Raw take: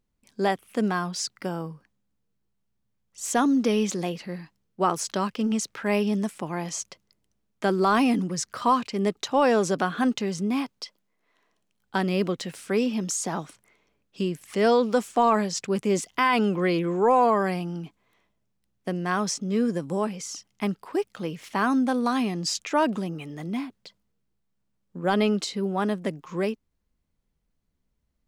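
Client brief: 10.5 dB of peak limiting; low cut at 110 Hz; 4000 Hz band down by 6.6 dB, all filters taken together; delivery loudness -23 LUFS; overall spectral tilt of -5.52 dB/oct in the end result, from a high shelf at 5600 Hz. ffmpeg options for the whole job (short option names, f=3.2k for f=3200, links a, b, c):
-af "highpass=110,equalizer=f=4k:t=o:g=-6.5,highshelf=f=5.6k:g=-6,volume=8dB,alimiter=limit=-12.5dB:level=0:latency=1"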